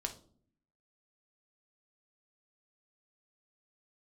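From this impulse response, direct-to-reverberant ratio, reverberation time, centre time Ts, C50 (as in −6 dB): 3.0 dB, 0.50 s, 9 ms, 12.5 dB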